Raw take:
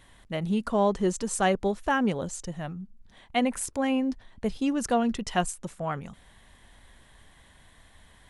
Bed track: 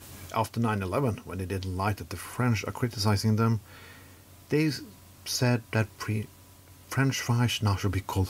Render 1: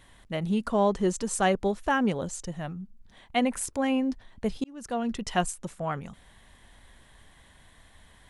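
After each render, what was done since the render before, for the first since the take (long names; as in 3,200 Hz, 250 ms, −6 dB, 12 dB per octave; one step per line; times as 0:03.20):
0:04.64–0:05.28: fade in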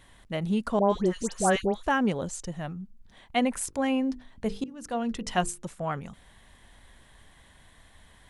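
0:00.79–0:01.83: all-pass dispersion highs, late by 112 ms, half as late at 1,400 Hz
0:03.58–0:05.66: mains-hum notches 50/100/150/200/250/300/350/400/450/500 Hz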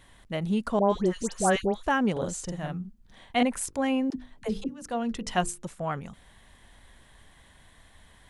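0:02.12–0:03.43: double-tracking delay 45 ms −2.5 dB
0:04.10–0:04.82: all-pass dispersion lows, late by 62 ms, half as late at 350 Hz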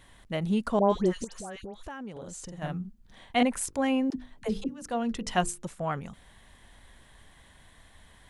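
0:01.24–0:02.62: downward compressor, threshold −38 dBFS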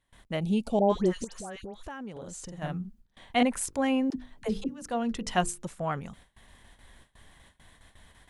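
noise gate with hold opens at −44 dBFS
0:00.40–0:00.90: gain on a spectral selection 900–2,200 Hz −17 dB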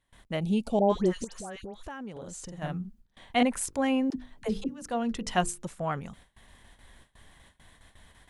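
no processing that can be heard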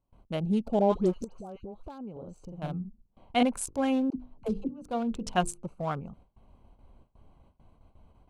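adaptive Wiener filter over 25 samples
parametric band 1,900 Hz −9.5 dB 0.22 octaves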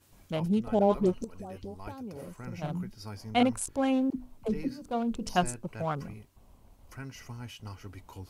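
mix in bed track −17 dB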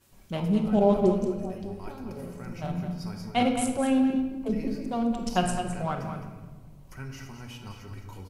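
single-tap delay 212 ms −9.5 dB
rectangular room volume 1,000 cubic metres, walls mixed, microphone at 1.1 metres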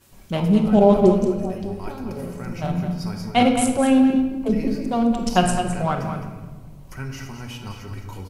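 level +7.5 dB
brickwall limiter −3 dBFS, peak gain reduction 1 dB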